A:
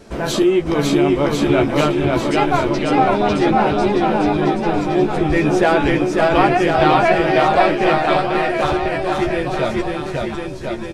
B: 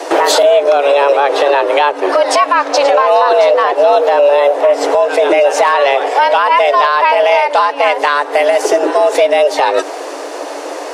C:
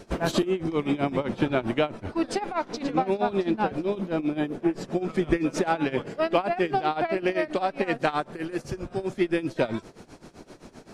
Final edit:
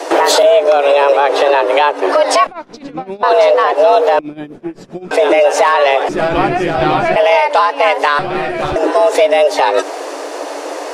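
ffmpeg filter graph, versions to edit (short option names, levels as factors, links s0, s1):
-filter_complex "[2:a]asplit=2[s0][s1];[0:a]asplit=2[s2][s3];[1:a]asplit=5[s4][s5][s6][s7][s8];[s4]atrim=end=2.472[s9];[s0]atrim=start=2.468:end=3.232[s10];[s5]atrim=start=3.228:end=4.192[s11];[s1]atrim=start=4.188:end=5.112[s12];[s6]atrim=start=5.108:end=6.092[s13];[s2]atrim=start=6.088:end=7.162[s14];[s7]atrim=start=7.158:end=8.192[s15];[s3]atrim=start=8.188:end=8.762[s16];[s8]atrim=start=8.758[s17];[s9][s10]acrossfade=d=0.004:c1=hsin:c2=hsin[s18];[s18][s11]acrossfade=d=0.004:c1=hsin:c2=hsin[s19];[s19][s12]acrossfade=d=0.004:c1=hsin:c2=hsin[s20];[s20][s13]acrossfade=d=0.004:c1=hsin:c2=hsin[s21];[s21][s14]acrossfade=d=0.004:c1=hsin:c2=hsin[s22];[s22][s15]acrossfade=d=0.004:c1=hsin:c2=hsin[s23];[s23][s16]acrossfade=d=0.004:c1=hsin:c2=hsin[s24];[s24][s17]acrossfade=d=0.004:c1=hsin:c2=hsin"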